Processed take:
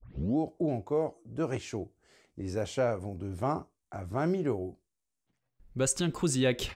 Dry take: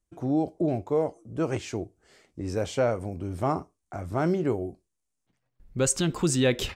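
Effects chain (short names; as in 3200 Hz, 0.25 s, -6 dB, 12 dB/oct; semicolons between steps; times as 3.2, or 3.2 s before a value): tape start at the beginning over 0.37 s; gain -4 dB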